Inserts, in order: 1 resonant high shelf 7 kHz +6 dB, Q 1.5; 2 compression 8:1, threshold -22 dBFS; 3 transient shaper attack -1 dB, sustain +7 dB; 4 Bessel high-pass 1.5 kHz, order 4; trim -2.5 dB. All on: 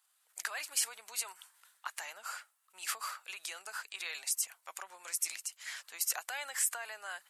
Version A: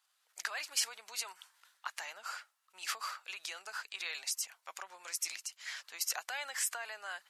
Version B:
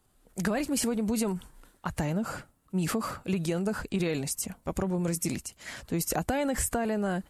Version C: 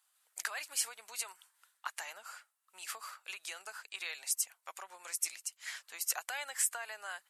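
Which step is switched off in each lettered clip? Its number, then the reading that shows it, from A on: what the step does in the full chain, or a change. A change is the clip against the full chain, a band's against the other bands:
1, 8 kHz band -3.0 dB; 4, 500 Hz band +21.5 dB; 3, momentary loudness spread change +2 LU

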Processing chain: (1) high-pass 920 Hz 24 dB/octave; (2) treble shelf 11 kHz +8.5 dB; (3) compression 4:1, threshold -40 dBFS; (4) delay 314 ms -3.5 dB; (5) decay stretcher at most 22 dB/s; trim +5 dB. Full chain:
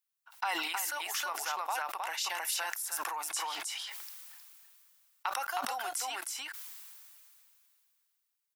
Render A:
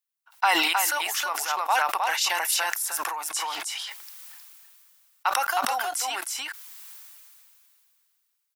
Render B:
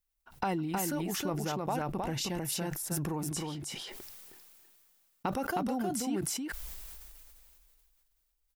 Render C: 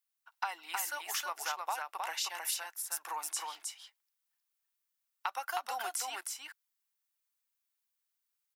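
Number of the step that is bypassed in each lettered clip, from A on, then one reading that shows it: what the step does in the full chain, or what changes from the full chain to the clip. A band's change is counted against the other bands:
3, mean gain reduction 6.0 dB; 1, 250 Hz band +22.5 dB; 5, momentary loudness spread change -7 LU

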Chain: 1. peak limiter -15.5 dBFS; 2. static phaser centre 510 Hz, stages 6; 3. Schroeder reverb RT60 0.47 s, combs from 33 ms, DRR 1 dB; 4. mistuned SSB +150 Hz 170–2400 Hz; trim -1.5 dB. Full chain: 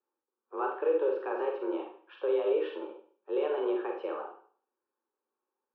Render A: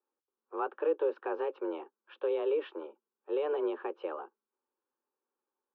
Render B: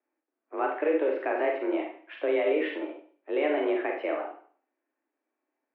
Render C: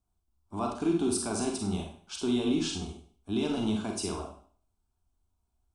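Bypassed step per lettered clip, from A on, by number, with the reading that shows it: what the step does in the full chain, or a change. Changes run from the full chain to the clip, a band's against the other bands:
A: 3, loudness change -2.5 LU; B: 2, momentary loudness spread change -2 LU; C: 4, 250 Hz band +11.0 dB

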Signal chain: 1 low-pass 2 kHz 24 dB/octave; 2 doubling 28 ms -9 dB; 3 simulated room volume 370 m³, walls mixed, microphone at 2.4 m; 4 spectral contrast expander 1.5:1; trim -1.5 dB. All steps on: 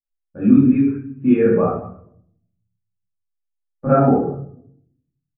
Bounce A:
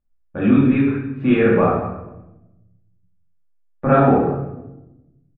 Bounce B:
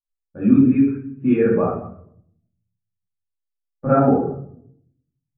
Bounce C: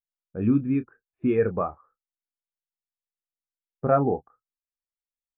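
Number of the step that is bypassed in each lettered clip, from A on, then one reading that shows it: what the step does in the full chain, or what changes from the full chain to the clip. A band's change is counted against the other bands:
4, 2 kHz band +8.0 dB; 2, loudness change -1.5 LU; 3, momentary loudness spread change -5 LU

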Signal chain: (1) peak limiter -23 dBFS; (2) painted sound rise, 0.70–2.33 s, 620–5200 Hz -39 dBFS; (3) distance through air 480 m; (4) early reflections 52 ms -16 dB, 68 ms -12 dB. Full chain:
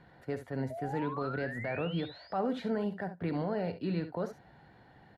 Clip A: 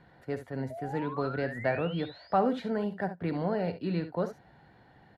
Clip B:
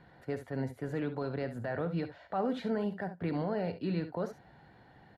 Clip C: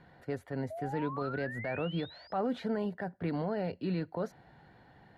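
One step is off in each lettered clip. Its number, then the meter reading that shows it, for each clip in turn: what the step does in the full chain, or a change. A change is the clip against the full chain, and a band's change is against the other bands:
1, crest factor change +4.5 dB; 2, 4 kHz band -4.0 dB; 4, echo-to-direct -10.5 dB to none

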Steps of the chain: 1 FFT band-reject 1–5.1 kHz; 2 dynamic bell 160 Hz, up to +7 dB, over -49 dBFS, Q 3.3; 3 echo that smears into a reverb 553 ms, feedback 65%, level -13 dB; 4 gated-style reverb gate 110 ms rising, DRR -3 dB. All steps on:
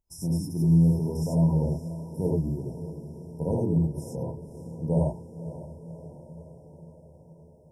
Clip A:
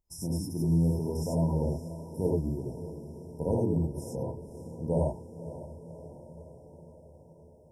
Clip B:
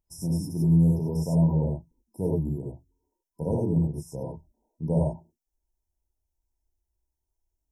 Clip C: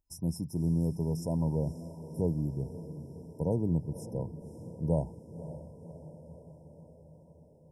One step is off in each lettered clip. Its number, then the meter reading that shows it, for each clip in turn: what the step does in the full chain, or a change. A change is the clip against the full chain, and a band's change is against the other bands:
2, 125 Hz band -5.0 dB; 3, momentary loudness spread change -4 LU; 4, momentary loudness spread change -2 LU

